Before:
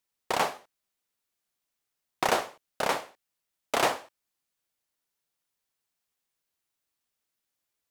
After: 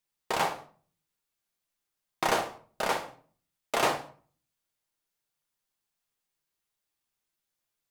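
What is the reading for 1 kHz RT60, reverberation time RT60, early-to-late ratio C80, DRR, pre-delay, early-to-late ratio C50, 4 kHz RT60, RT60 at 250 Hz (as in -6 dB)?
0.45 s, 0.45 s, 17.0 dB, 3.5 dB, 5 ms, 12.5 dB, 0.30 s, 0.60 s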